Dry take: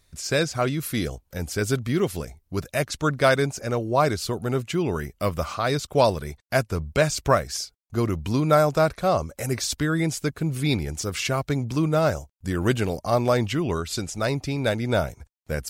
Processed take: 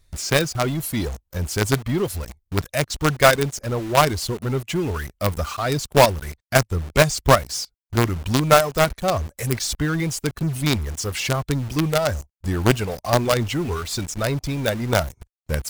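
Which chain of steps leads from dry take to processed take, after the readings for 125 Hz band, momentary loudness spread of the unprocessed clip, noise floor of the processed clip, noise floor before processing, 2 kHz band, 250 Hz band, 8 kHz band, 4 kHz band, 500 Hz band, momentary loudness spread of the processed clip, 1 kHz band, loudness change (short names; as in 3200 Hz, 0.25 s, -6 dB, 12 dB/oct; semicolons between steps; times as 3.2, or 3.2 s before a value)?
+3.0 dB, 8 LU, -74 dBFS, -68 dBFS, +4.5 dB, +1.0 dB, +5.0 dB, +5.0 dB, +2.0 dB, 11 LU, +4.0 dB, +3.0 dB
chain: reverb removal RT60 1.7 s; low shelf 93 Hz +11.5 dB; in parallel at -5 dB: companded quantiser 2-bit; on the sum: gain -2 dB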